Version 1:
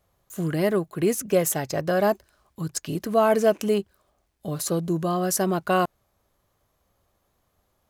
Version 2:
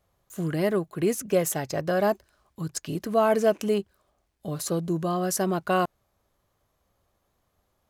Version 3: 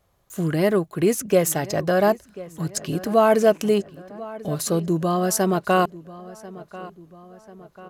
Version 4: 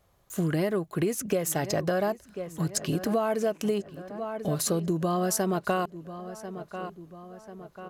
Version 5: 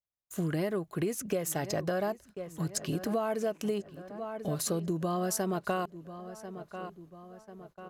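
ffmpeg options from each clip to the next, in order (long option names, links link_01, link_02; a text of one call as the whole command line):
ffmpeg -i in.wav -af "highshelf=frequency=11000:gain=-4,volume=-2dB" out.wav
ffmpeg -i in.wav -filter_complex "[0:a]asplit=2[link_01][link_02];[link_02]adelay=1041,lowpass=frequency=3400:poles=1,volume=-18dB,asplit=2[link_03][link_04];[link_04]adelay=1041,lowpass=frequency=3400:poles=1,volume=0.52,asplit=2[link_05][link_06];[link_06]adelay=1041,lowpass=frequency=3400:poles=1,volume=0.52,asplit=2[link_07][link_08];[link_08]adelay=1041,lowpass=frequency=3400:poles=1,volume=0.52[link_09];[link_01][link_03][link_05][link_07][link_09]amix=inputs=5:normalize=0,volume=5dB" out.wav
ffmpeg -i in.wav -af "acompressor=threshold=-23dB:ratio=12" out.wav
ffmpeg -i in.wav -af "agate=range=-34dB:threshold=-48dB:ratio=16:detection=peak,volume=-4.5dB" out.wav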